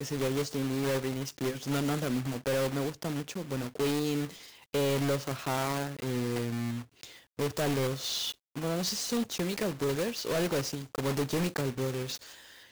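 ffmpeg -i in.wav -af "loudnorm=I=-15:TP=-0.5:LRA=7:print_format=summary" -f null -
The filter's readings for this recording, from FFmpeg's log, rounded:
Input Integrated:    -32.1 LUFS
Input True Peak:     -23.4 dBTP
Input LRA:             0.9 LU
Input Threshold:     -42.3 LUFS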